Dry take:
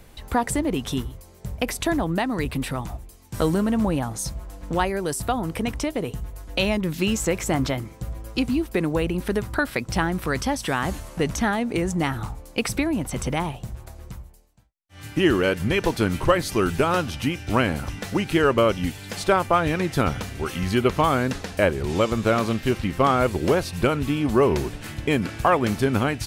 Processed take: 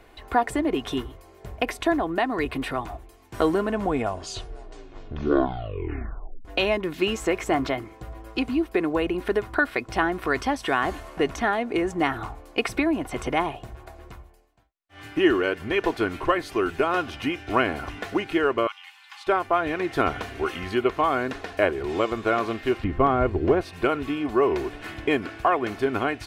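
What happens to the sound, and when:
3.59 s: tape stop 2.86 s
18.67–19.27 s: rippled Chebyshev high-pass 790 Hz, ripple 6 dB
22.84–23.61 s: RIAA curve playback
whole clip: tone controls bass -11 dB, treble -14 dB; comb 2.8 ms, depth 44%; gain riding within 3 dB 0.5 s

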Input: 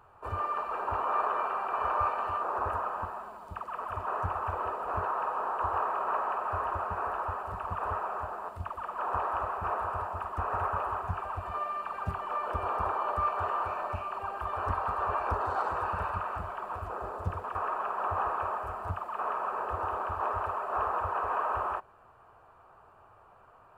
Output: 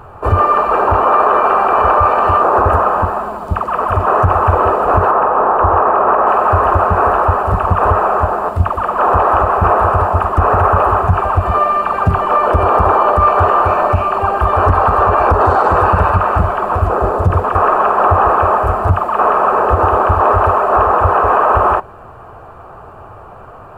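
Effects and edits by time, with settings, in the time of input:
5.11–6.27 s: Gaussian low-pass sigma 3 samples
whole clip: tilt shelf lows +5 dB, about 770 Hz; band-stop 950 Hz, Q 21; loudness maximiser +23.5 dB; trim -1 dB

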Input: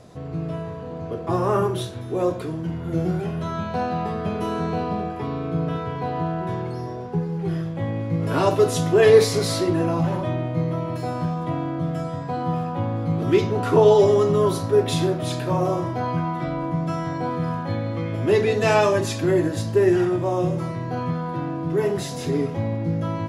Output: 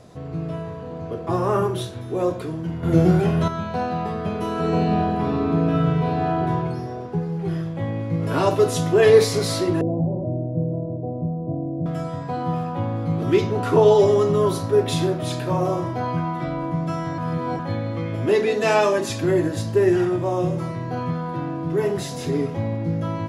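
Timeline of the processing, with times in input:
2.83–3.48 s: gain +7.5 dB
4.53–6.39 s: reverb throw, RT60 2.3 s, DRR -3 dB
9.81–11.86 s: steep low-pass 670 Hz
17.18–17.59 s: reverse
18.29–19.10 s: high-pass 180 Hz 24 dB/octave

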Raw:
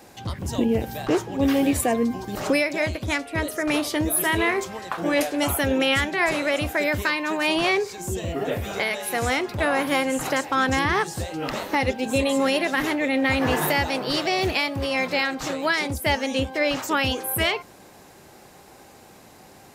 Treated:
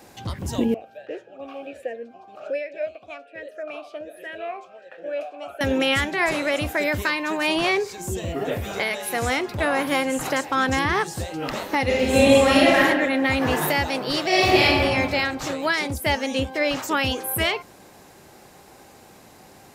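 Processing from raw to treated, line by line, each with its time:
0.74–5.61 s: talking filter a-e 1.3 Hz
11.85–12.79 s: reverb throw, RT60 1.4 s, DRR -6 dB
14.26–14.81 s: reverb throw, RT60 1.5 s, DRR -6.5 dB

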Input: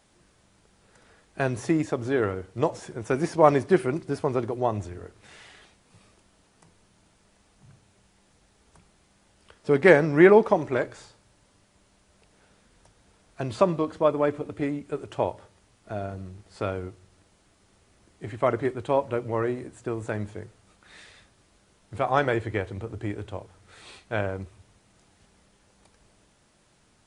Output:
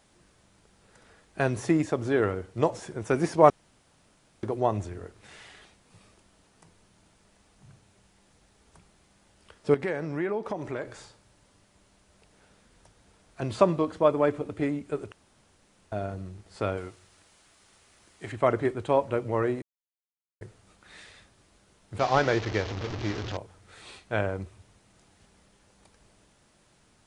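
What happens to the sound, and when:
3.50–4.43 s: room tone
9.74–13.42 s: compression 3:1, threshold -31 dBFS
15.12–15.92 s: room tone
16.77–18.32 s: tilt shelf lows -6 dB, about 630 Hz
19.62–20.41 s: mute
21.99–23.37 s: one-bit delta coder 32 kbps, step -29 dBFS

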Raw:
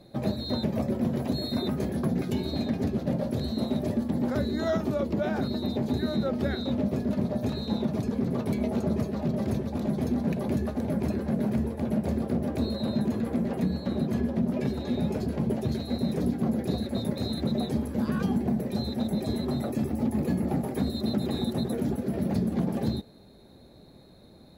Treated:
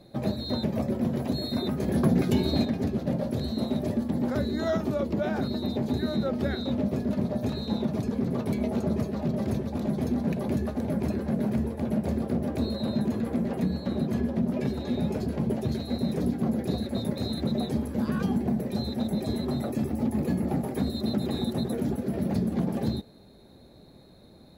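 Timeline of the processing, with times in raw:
1.88–2.65 s: gain +5 dB

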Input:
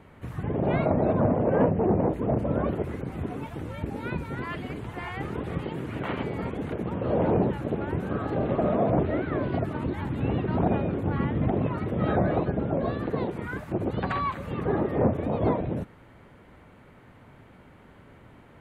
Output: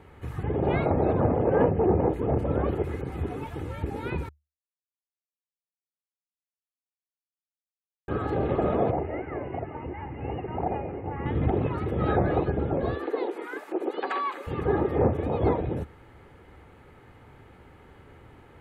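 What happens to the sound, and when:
4.29–8.08 s: mute
8.91–11.26 s: rippled Chebyshev low-pass 2.9 kHz, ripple 9 dB
12.95–14.47 s: steep high-pass 290 Hz
whole clip: peaking EQ 74 Hz +6 dB 0.23 oct; comb 2.4 ms, depth 40%

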